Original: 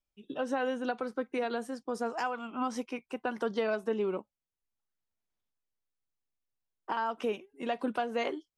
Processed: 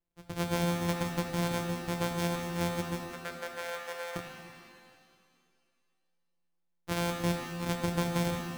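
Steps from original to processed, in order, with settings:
samples sorted by size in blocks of 256 samples
0:03.06–0:04.16: Chebyshev high-pass with heavy ripple 400 Hz, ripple 9 dB
reverb with rising layers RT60 2.2 s, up +7 semitones, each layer −8 dB, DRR 4.5 dB

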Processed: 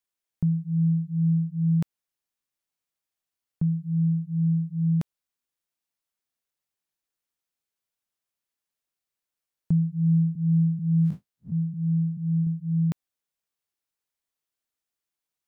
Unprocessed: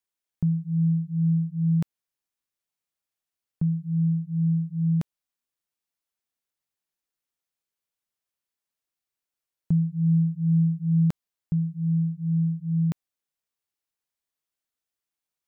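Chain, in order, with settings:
0:10.35–0:12.47: spectrum smeared in time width 92 ms

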